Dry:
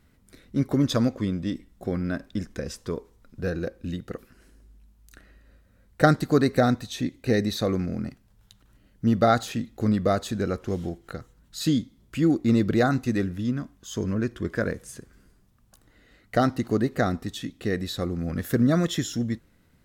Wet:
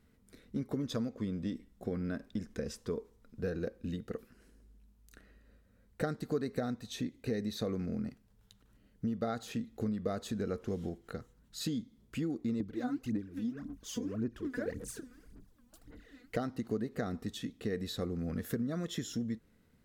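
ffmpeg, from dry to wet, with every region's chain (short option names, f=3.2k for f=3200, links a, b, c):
-filter_complex "[0:a]asettb=1/sr,asplit=3[a][b][c];[a]atrim=end=12.604[d];[b]atrim=start=12.6:end=16.36,asetpts=PTS-STARTPTS,afade=t=in:d=0.004:c=qsin,afade=t=out:st=3.756:d=0.004:c=qsin,equalizer=f=290:w=4.5:g=9,acompressor=threshold=-36dB:ratio=2:attack=3.2:release=140:knee=1:detection=peak,aphaser=in_gain=1:out_gain=1:delay=4.1:decay=0.8:speed=1.8:type=sinusoidal[e];[c]atrim=start=16.356[f];[d][e]acrossfade=d=0.004:c1=hsin:c2=qsin[g];[g][f]acrossfade=d=0.004:c1=qsin:c2=hsin,equalizer=f=220:w=3.6:g=6,acompressor=threshold=-25dB:ratio=6,equalizer=f=450:w=6.9:g=8,volume=-7.5dB"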